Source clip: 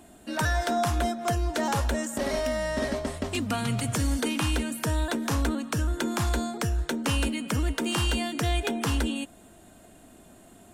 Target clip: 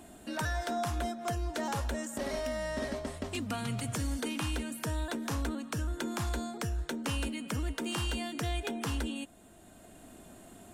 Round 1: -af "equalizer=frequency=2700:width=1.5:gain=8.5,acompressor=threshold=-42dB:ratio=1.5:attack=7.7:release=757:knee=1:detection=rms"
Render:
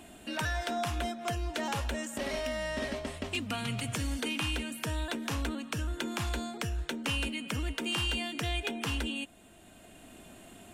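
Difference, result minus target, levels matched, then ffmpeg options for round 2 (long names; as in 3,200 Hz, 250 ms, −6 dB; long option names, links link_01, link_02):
2,000 Hz band +3.0 dB
-af "acompressor=threshold=-42dB:ratio=1.5:attack=7.7:release=757:knee=1:detection=rms"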